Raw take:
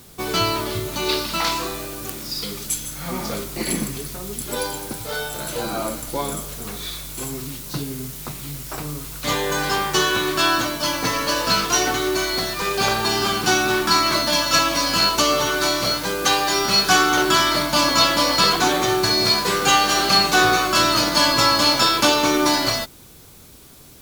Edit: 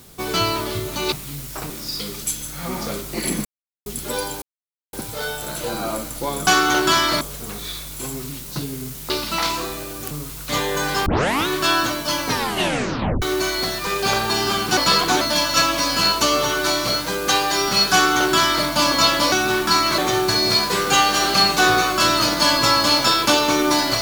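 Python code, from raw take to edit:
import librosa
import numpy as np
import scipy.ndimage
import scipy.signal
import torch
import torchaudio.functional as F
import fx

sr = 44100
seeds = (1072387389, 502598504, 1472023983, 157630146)

y = fx.edit(x, sr, fx.swap(start_s=1.12, length_s=1.01, other_s=8.28, other_length_s=0.58),
    fx.silence(start_s=3.88, length_s=0.41),
    fx.insert_silence(at_s=4.85, length_s=0.51),
    fx.tape_start(start_s=9.81, length_s=0.41),
    fx.tape_stop(start_s=11.01, length_s=0.96),
    fx.swap(start_s=13.52, length_s=0.66, other_s=18.29, other_length_s=0.44),
    fx.duplicate(start_s=16.9, length_s=0.74, to_s=6.39), tone=tone)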